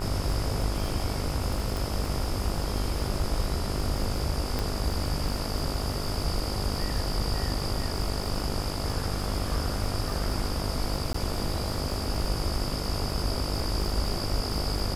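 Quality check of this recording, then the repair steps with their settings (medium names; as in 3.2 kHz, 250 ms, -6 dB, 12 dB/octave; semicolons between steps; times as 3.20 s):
buzz 50 Hz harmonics 29 -34 dBFS
crackle 44 per s -34 dBFS
1.77 s: pop
4.59 s: pop -15 dBFS
11.13–11.14 s: dropout 14 ms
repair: de-click; de-hum 50 Hz, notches 29; interpolate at 11.13 s, 14 ms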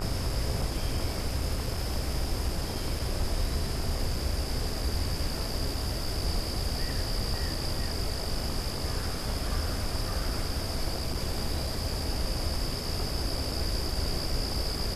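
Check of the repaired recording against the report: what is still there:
4.59 s: pop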